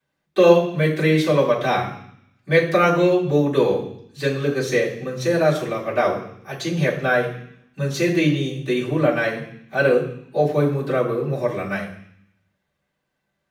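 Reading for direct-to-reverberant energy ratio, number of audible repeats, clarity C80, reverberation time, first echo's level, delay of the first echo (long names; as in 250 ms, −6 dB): −12.0 dB, no echo audible, 11.0 dB, 0.65 s, no echo audible, no echo audible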